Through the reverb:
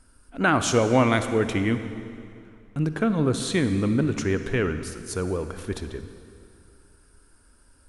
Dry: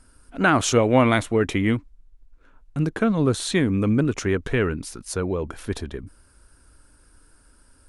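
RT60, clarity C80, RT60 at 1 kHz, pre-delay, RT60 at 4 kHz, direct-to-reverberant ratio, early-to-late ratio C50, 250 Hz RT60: 2.5 s, 10.5 dB, 2.5 s, 36 ms, 2.1 s, 9.0 dB, 9.5 dB, 2.5 s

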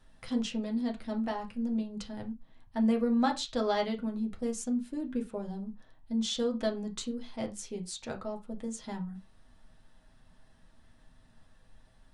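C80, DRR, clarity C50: 21.5 dB, 1.0 dB, 16.0 dB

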